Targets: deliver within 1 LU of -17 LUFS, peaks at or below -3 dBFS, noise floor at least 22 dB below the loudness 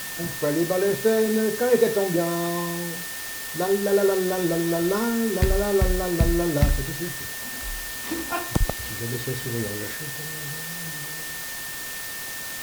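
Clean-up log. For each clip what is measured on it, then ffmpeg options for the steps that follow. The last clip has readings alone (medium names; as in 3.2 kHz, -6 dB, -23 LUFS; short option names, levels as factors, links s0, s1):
steady tone 1.8 kHz; tone level -37 dBFS; noise floor -33 dBFS; noise floor target -47 dBFS; loudness -25.0 LUFS; peak level -6.0 dBFS; loudness target -17.0 LUFS
-> -af "bandreject=f=1800:w=30"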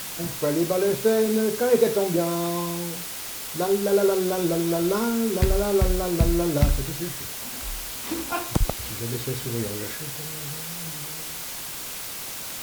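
steady tone not found; noise floor -34 dBFS; noise floor target -47 dBFS
-> -af "afftdn=nr=13:nf=-34"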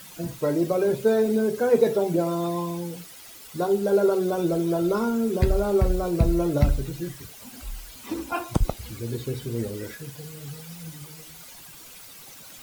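noise floor -45 dBFS; noise floor target -47 dBFS
-> -af "afftdn=nr=6:nf=-45"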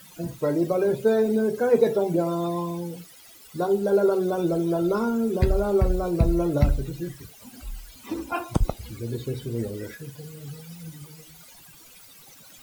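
noise floor -49 dBFS; loudness -25.0 LUFS; peak level -6.5 dBFS; loudness target -17.0 LUFS
-> -af "volume=2.51,alimiter=limit=0.708:level=0:latency=1"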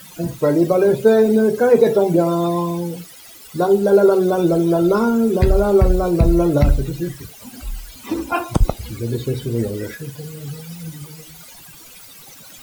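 loudness -17.0 LUFS; peak level -3.0 dBFS; noise floor -41 dBFS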